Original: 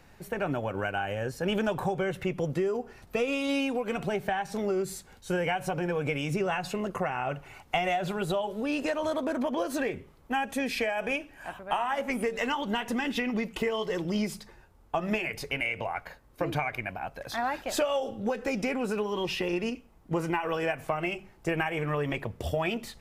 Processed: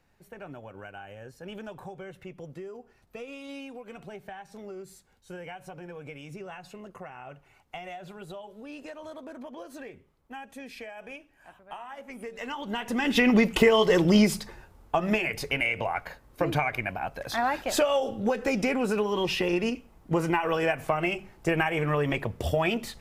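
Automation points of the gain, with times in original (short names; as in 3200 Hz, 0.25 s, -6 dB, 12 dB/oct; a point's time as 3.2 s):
12.09 s -12.5 dB
12.92 s +0.5 dB
13.26 s +10 dB
14.16 s +10 dB
15.02 s +3.5 dB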